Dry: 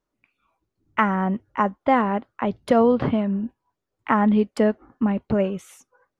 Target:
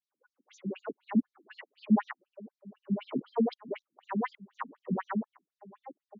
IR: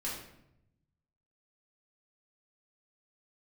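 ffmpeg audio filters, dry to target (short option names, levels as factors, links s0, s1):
-filter_complex "[0:a]areverse,aeval=exprs='0.562*(cos(1*acos(clip(val(0)/0.562,-1,1)))-cos(1*PI/2))+0.0126*(cos(5*acos(clip(val(0)/0.562,-1,1)))-cos(5*PI/2))':c=same,asplit=2[s0][s1];[s1]adelay=1574,volume=0.112,highshelf=f=4000:g=-35.4[s2];[s0][s2]amix=inputs=2:normalize=0,acrossover=split=250[s3][s4];[s4]alimiter=limit=0.2:level=0:latency=1:release=106[s5];[s3][s5]amix=inputs=2:normalize=0,afftfilt=real='re*between(b*sr/1024,220*pow(5200/220,0.5+0.5*sin(2*PI*4*pts/sr))/1.41,220*pow(5200/220,0.5+0.5*sin(2*PI*4*pts/sr))*1.41)':imag='im*between(b*sr/1024,220*pow(5200/220,0.5+0.5*sin(2*PI*4*pts/sr))/1.41,220*pow(5200/220,0.5+0.5*sin(2*PI*4*pts/sr))*1.41)':win_size=1024:overlap=0.75,volume=0.708"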